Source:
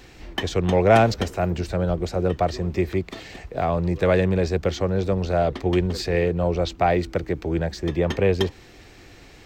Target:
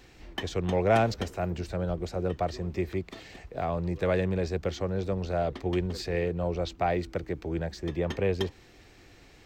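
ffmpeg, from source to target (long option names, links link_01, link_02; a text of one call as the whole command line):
ffmpeg -i in.wav -af "volume=-7.5dB" out.wav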